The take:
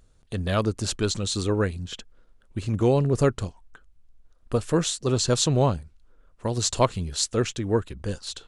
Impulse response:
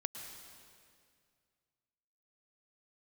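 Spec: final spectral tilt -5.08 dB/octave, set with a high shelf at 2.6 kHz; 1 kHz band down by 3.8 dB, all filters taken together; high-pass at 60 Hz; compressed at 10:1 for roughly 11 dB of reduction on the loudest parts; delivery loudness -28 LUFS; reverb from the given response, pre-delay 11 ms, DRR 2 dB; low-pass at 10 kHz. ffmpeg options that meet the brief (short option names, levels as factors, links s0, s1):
-filter_complex "[0:a]highpass=60,lowpass=10000,equalizer=f=1000:t=o:g=-4,highshelf=f=2600:g=-5.5,acompressor=threshold=0.0398:ratio=10,asplit=2[s0][s1];[1:a]atrim=start_sample=2205,adelay=11[s2];[s1][s2]afir=irnorm=-1:irlink=0,volume=0.841[s3];[s0][s3]amix=inputs=2:normalize=0,volume=1.58"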